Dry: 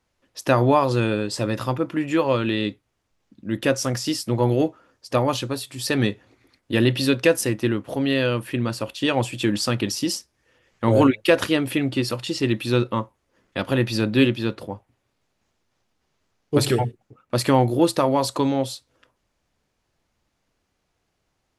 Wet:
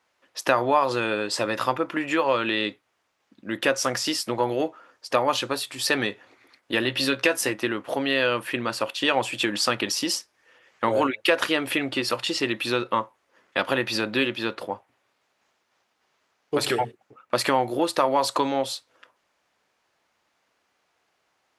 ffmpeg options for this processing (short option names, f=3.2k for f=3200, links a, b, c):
-filter_complex "[0:a]asettb=1/sr,asplit=3[a][b][c];[a]atrim=end=6.824[d];[b]atrim=start=6.82:end=7.53,asetpts=PTS-STARTPTS,afade=t=in:d=0.004:c=qsin,afade=t=out:st=0.706:d=0.004:c=qsin,asplit=2[e][f];[f]adelay=15,volume=-8dB[g];[e][g]amix=inputs=2:normalize=0,atrim=end_sample=31311[h];[c]atrim=start=7.526[i];[d][h]acrossfade=d=0.004:c1=hsin:c2=qsin[j];[j][i]acrossfade=d=0.004:c1=qsin:c2=hsin,acompressor=threshold=-21dB:ratio=3,highpass=f=460:p=1,equalizer=f=1.3k:w=0.35:g=7.5"